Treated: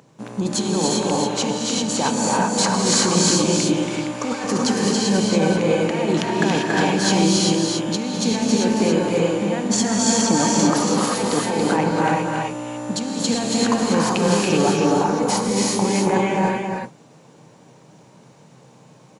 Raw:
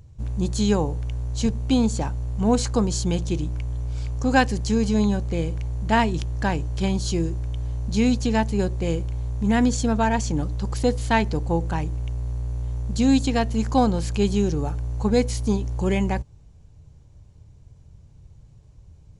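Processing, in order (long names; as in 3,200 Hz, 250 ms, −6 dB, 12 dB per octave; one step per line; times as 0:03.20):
Butterworth high-pass 170 Hz 36 dB per octave
parametric band 1,100 Hz +6.5 dB 2.4 octaves
compressor whose output falls as the input rises −26 dBFS, ratio −1
single-tap delay 280 ms −4 dB
reverb whose tail is shaped and stops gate 420 ms rising, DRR −3.5 dB
level +2 dB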